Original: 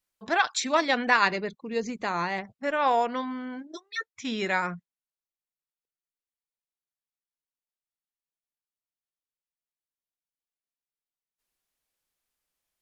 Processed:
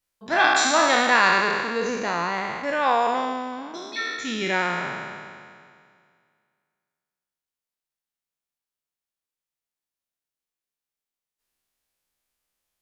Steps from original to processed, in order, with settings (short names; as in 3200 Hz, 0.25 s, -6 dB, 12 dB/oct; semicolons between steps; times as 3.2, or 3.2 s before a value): spectral trails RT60 2.13 s